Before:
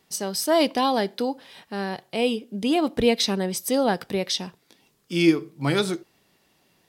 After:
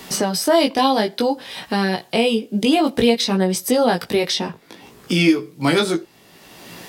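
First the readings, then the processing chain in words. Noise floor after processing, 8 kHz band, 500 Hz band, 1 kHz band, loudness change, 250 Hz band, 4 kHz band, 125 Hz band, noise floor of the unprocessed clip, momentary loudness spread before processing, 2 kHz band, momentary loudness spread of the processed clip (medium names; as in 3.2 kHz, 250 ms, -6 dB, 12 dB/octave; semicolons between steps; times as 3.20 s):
-50 dBFS, +4.5 dB, +5.0 dB, +6.0 dB, +5.0 dB, +5.5 dB, +5.5 dB, +5.5 dB, -66 dBFS, 10 LU, +6.5 dB, 6 LU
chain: chorus 0.57 Hz, delay 16 ms, depth 2.7 ms; three bands compressed up and down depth 70%; trim +8.5 dB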